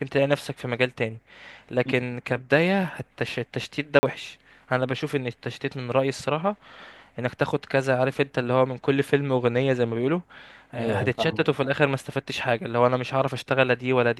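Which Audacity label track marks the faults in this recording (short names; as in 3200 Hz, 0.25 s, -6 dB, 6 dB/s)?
3.990000	4.030000	gap 40 ms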